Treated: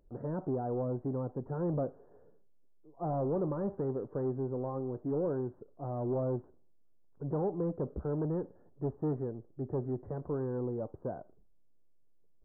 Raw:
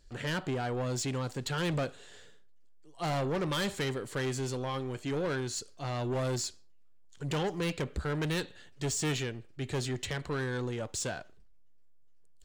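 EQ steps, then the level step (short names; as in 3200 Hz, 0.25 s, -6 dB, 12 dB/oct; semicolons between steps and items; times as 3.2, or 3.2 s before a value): Gaussian blur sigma 11 samples; low shelf 160 Hz -11.5 dB; +4.5 dB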